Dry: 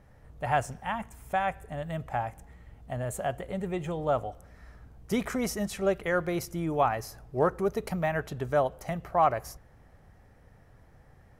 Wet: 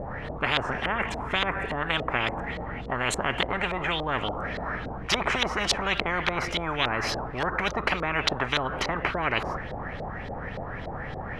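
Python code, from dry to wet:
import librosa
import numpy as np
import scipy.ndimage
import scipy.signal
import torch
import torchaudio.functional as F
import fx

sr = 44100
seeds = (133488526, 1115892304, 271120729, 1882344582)

y = fx.filter_lfo_lowpass(x, sr, shape='saw_up', hz=3.5, low_hz=560.0, high_hz=4100.0, q=3.6)
y = fx.spectral_comp(y, sr, ratio=10.0)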